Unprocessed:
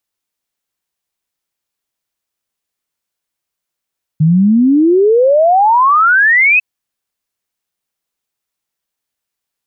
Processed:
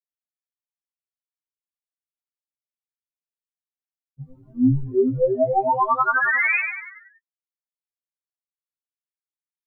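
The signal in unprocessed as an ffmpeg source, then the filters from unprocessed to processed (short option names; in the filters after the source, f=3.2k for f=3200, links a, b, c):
-f lavfi -i "aevalsrc='0.501*clip(min(t,2.4-t)/0.01,0,1)*sin(2*PI*150*2.4/log(2600/150)*(exp(log(2600/150)*t/2.4)-1))':d=2.4:s=44100"
-filter_complex "[0:a]agate=range=-33dB:threshold=-2dB:ratio=3:detection=peak,asplit=2[a][b];[b]asplit=6[c][d][e][f][g][h];[c]adelay=97,afreqshift=-120,volume=-5dB[i];[d]adelay=194,afreqshift=-240,volume=-11.2dB[j];[e]adelay=291,afreqshift=-360,volume=-17.4dB[k];[f]adelay=388,afreqshift=-480,volume=-23.6dB[l];[g]adelay=485,afreqshift=-600,volume=-29.8dB[m];[h]adelay=582,afreqshift=-720,volume=-36dB[n];[i][j][k][l][m][n]amix=inputs=6:normalize=0[o];[a][o]amix=inputs=2:normalize=0,afftfilt=real='re*2.45*eq(mod(b,6),0)':imag='im*2.45*eq(mod(b,6),0)':win_size=2048:overlap=0.75"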